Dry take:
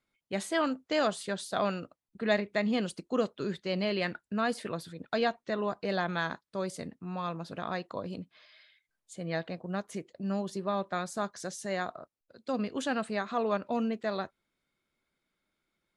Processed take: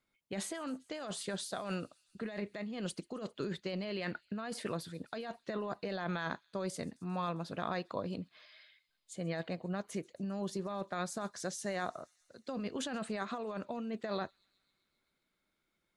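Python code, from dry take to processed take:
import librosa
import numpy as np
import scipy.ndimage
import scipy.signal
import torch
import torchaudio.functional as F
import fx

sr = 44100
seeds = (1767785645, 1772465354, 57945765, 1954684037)

y = fx.over_compress(x, sr, threshold_db=-34.0, ratio=-1.0)
y = fx.echo_wet_highpass(y, sr, ms=133, feedback_pct=73, hz=3700.0, wet_db=-22.0)
y = F.gain(torch.from_numpy(y), -3.5).numpy()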